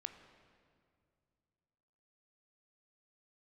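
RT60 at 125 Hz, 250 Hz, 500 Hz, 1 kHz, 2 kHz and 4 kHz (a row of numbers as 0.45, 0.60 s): 3.2, 2.8, 2.5, 2.2, 1.8, 1.7 s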